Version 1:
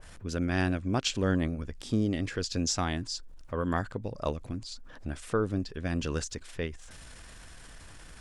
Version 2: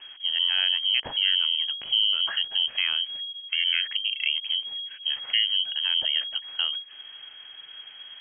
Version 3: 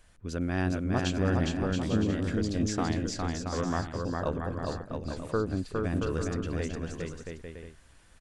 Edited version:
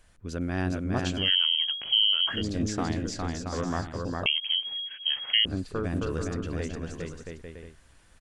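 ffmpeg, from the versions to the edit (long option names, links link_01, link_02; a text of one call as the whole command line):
ffmpeg -i take0.wav -i take1.wav -i take2.wav -filter_complex "[1:a]asplit=2[link_01][link_02];[2:a]asplit=3[link_03][link_04][link_05];[link_03]atrim=end=1.31[link_06];[link_01]atrim=start=1.15:end=2.45[link_07];[link_04]atrim=start=2.29:end=4.262[link_08];[link_02]atrim=start=4.258:end=5.452[link_09];[link_05]atrim=start=5.448[link_10];[link_06][link_07]acrossfade=duration=0.16:curve1=tri:curve2=tri[link_11];[link_11][link_08]acrossfade=duration=0.16:curve1=tri:curve2=tri[link_12];[link_12][link_09]acrossfade=duration=0.004:curve1=hsin:curve2=hsin[link_13];[link_13][link_10]acrossfade=duration=0.004:curve1=hsin:curve2=hsin" out.wav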